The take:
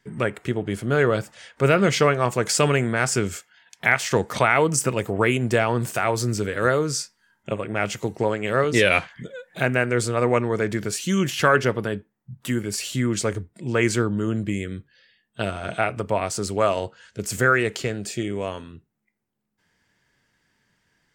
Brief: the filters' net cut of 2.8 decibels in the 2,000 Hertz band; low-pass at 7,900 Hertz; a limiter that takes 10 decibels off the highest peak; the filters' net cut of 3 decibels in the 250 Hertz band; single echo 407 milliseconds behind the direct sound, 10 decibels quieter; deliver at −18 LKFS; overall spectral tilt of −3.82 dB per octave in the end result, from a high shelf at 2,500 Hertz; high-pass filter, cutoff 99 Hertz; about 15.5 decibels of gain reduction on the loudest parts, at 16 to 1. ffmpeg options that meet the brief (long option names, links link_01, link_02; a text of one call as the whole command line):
ffmpeg -i in.wav -af "highpass=99,lowpass=7900,equalizer=frequency=250:width_type=o:gain=-4,equalizer=frequency=2000:width_type=o:gain=-6.5,highshelf=frequency=2500:gain=6,acompressor=threshold=-30dB:ratio=16,alimiter=limit=-24dB:level=0:latency=1,aecho=1:1:407:0.316,volume=18dB" out.wav